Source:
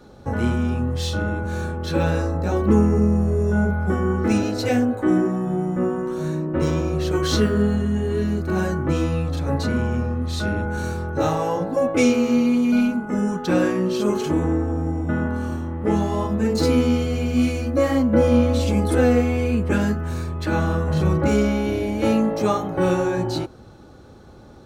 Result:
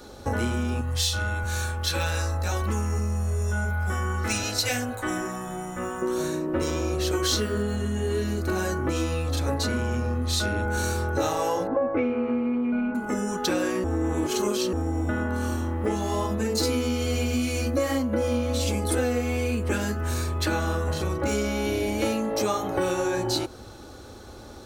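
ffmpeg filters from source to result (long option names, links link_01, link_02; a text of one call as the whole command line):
ffmpeg -i in.wav -filter_complex "[0:a]asettb=1/sr,asplit=3[link_01][link_02][link_03];[link_01]atrim=end=0.814[link_04];[link_02]atrim=start=0.81:end=6.02,asetpts=PTS-STARTPTS,afade=type=in:duration=0.004:curve=qsin,afade=type=out:start_time=5.206:duration=0.004:curve=qsin,equalizer=frequency=330:width_type=o:width=2:gain=-14.5[link_05];[link_03]atrim=start=6.016[link_06];[link_04][link_05]acrossfade=duration=0.004:curve1=hsin:curve2=qsin[link_07];[link_07][link_06]acrossfade=duration=0.004:curve1=qsin:curve2=hsin,asettb=1/sr,asplit=3[link_08][link_09][link_10];[link_08]atrim=end=11.674[link_11];[link_09]atrim=start=11.67:end=12.95,asetpts=PTS-STARTPTS,afade=type=in:duration=0.004:curve=qsin,afade=type=out:start_time=1.276:duration=0.004:curve=qsin,lowpass=frequency=1900:width=0.5412,lowpass=frequency=1900:width=1.3066[link_12];[link_10]atrim=start=12.946[link_13];[link_11][link_12]acrossfade=duration=0.004:curve1=hsin:curve2=qsin[link_14];[link_14][link_13]acrossfade=duration=0.004:curve1=qsin:curve2=hsin,asplit=3[link_15][link_16][link_17];[link_15]atrim=end=13.842[link_18];[link_16]atrim=start=13.838:end=14.732,asetpts=PTS-STARTPTS,areverse[link_19];[link_17]atrim=start=14.728[link_20];[link_18][link_19]acrossfade=duration=0.004:curve1=hsin:curve2=hsin[link_21];[link_21][link_20]acrossfade=duration=0.004:curve1=hsin:curve2=hsin,highshelf=frequency=3600:gain=11,acompressor=threshold=-24dB:ratio=6,equalizer=frequency=160:width=2.4:gain=-12,volume=3dB" out.wav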